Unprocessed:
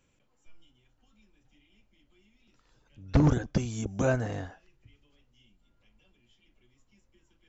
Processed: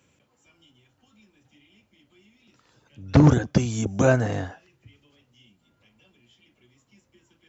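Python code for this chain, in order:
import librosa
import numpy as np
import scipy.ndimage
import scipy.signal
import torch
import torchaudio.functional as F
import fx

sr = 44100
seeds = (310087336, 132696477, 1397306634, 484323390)

y = scipy.signal.sosfilt(scipy.signal.butter(4, 78.0, 'highpass', fs=sr, output='sos'), x)
y = F.gain(torch.from_numpy(y), 7.5).numpy()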